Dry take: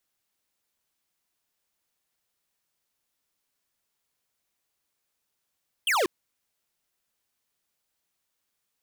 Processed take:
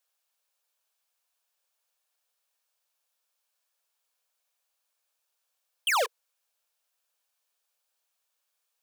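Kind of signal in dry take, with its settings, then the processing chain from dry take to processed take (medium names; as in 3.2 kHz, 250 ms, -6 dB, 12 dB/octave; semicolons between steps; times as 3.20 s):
laser zap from 3.3 kHz, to 320 Hz, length 0.19 s square, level -23.5 dB
steep high-pass 460 Hz 96 dB/octave; band-stop 2 kHz, Q 9.3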